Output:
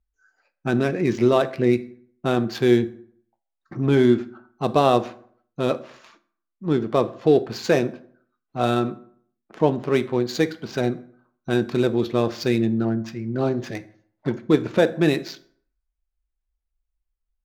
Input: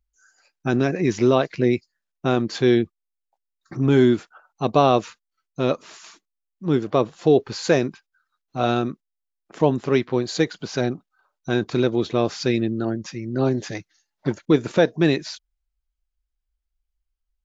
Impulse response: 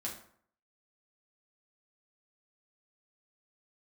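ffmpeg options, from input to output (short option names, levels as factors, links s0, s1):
-filter_complex "[0:a]adynamicsmooth=sensitivity=6:basefreq=2400,asplit=2[s0][s1];[1:a]atrim=start_sample=2205[s2];[s1][s2]afir=irnorm=-1:irlink=0,volume=0.398[s3];[s0][s3]amix=inputs=2:normalize=0,volume=0.75"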